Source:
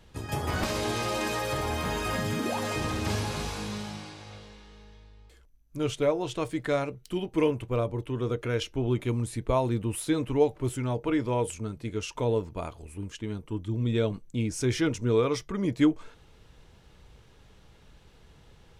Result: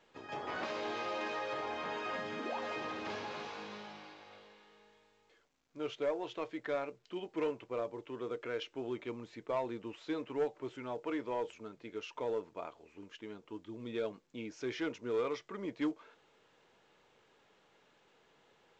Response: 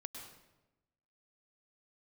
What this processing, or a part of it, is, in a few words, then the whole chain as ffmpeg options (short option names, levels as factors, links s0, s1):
telephone: -af "highpass=360,lowpass=3200,asoftclip=type=tanh:threshold=0.1,volume=0.501" -ar 16000 -c:a pcm_mulaw